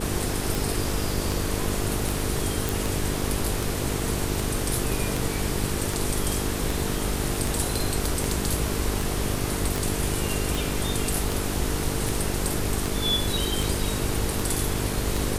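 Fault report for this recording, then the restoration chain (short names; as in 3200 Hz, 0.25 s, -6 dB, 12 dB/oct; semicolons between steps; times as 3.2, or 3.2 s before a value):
buzz 50 Hz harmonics 9 -31 dBFS
tick 78 rpm
2.69 pop
9.76 pop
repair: de-click; de-hum 50 Hz, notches 9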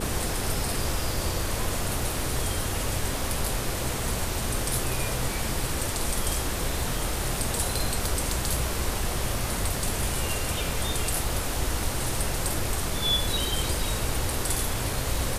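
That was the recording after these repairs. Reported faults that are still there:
none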